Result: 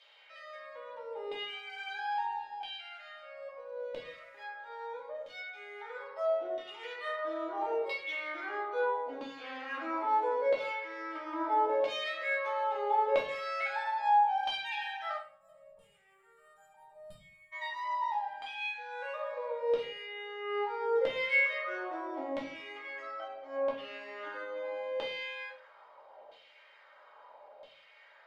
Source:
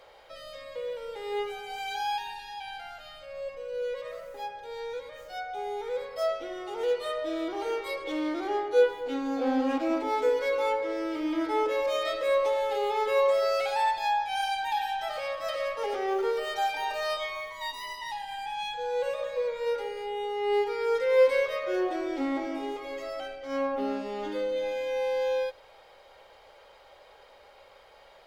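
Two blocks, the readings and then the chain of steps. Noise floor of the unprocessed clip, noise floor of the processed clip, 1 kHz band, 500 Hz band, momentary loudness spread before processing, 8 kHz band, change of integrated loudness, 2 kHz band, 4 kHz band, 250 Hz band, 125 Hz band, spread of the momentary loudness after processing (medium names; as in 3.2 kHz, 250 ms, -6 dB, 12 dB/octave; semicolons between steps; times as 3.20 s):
-55 dBFS, -61 dBFS, -2.0 dB, -8.0 dB, 12 LU, under -15 dB, -4.5 dB, 0.0 dB, -4.5 dB, -13.5 dB, no reading, 16 LU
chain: LFO band-pass saw down 0.76 Hz 600–3300 Hz; time-frequency box 15.17–17.53 s, 230–6900 Hz -27 dB; simulated room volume 300 m³, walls furnished, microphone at 2.7 m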